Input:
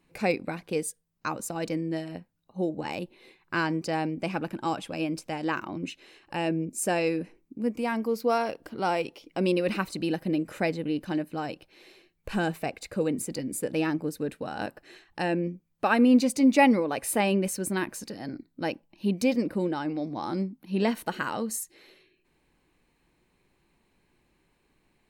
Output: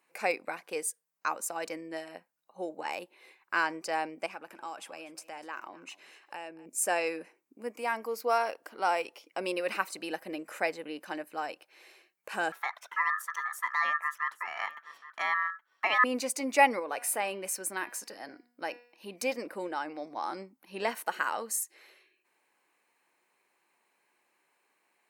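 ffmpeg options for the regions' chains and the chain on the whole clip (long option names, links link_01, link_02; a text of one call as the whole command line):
ffmpeg -i in.wav -filter_complex "[0:a]asettb=1/sr,asplit=3[link_01][link_02][link_03];[link_01]atrim=end=4.264[link_04];[link_02]atrim=start=4.26:end=6.66,asetpts=PTS-STARTPTS,afade=type=in:duration=0.004:curve=qsin,afade=type=out:start_time=2.396:duration=0.004:curve=qsin,acompressor=threshold=-37dB:ratio=3:attack=3.2:release=140:knee=1:detection=peak,aecho=1:1:246:0.112,atrim=end_sample=105840[link_05];[link_03]atrim=start=6.656[link_06];[link_04][link_05]acrossfade=duration=0.004:curve1=hsin:curve2=qsin[link_07];[link_07][link_06]acrossfade=duration=0.004:curve1=qsin:curve2=hsin,asettb=1/sr,asplit=3[link_08][link_09][link_10];[link_08]atrim=end=12.524[link_11];[link_09]atrim=start=12.52:end=16.04,asetpts=PTS-STARTPTS,afade=type=in:duration=0.004:curve=qsin,afade=type=out:start_time=3.516:duration=0.004:curve=qsin,equalizer=frequency=8200:width_type=o:width=2:gain=-9.5,aeval=exprs='val(0)*sin(2*PI*1500*n/s)':channel_layout=same,aecho=1:1:821:0.133,atrim=end_sample=155232[link_12];[link_10]atrim=start=16.036[link_13];[link_11][link_12]acrossfade=duration=0.004:curve1=hsin:curve2=qsin[link_14];[link_14][link_13]acrossfade=duration=0.004:curve1=qsin:curve2=hsin,asettb=1/sr,asplit=3[link_15][link_16][link_17];[link_15]atrim=end=16.794[link_18];[link_16]atrim=start=16.79:end=19.16,asetpts=PTS-STARTPTS,afade=type=in:duration=0.004:curve=qsin,afade=type=out:start_time=2.366:duration=0.004:curve=qsin,bandreject=frequency=242.2:width_type=h:width=4,bandreject=frequency=484.4:width_type=h:width=4,bandreject=frequency=726.6:width_type=h:width=4,bandreject=frequency=968.8:width_type=h:width=4,bandreject=frequency=1211:width_type=h:width=4,bandreject=frequency=1453.2:width_type=h:width=4,bandreject=frequency=1695.4:width_type=h:width=4,bandreject=frequency=1937.6:width_type=h:width=4,bandreject=frequency=2179.8:width_type=h:width=4,bandreject=frequency=2422:width_type=h:width=4,bandreject=frequency=2664.2:width_type=h:width=4,bandreject=frequency=2906.4:width_type=h:width=4,bandreject=frequency=3148.6:width_type=h:width=4,bandreject=frequency=3390.8:width_type=h:width=4,bandreject=frequency=3633:width_type=h:width=4,bandreject=frequency=3875.2:width_type=h:width=4,bandreject=frequency=4117.4:width_type=h:width=4,bandreject=frequency=4359.6:width_type=h:width=4,bandreject=frequency=4601.8:width_type=h:width=4,bandreject=frequency=4844:width_type=h:width=4,bandreject=frequency=5086.2:width_type=h:width=4,bandreject=frequency=5328.4:width_type=h:width=4,bandreject=frequency=5570.6:width_type=h:width=4,bandreject=frequency=5812.8:width_type=h:width=4,acompressor=threshold=-30dB:ratio=1.5:attack=3.2:release=140:knee=1:detection=peak[link_19];[link_17]atrim=start=19.156[link_20];[link_18][link_19]acrossfade=duration=0.004:curve1=hsin:curve2=qsin[link_21];[link_21][link_20]acrossfade=duration=0.004:curve1=qsin:curve2=hsin,highpass=710,equalizer=frequency=3700:width_type=o:width=0.87:gain=-7.5,volume=2dB" out.wav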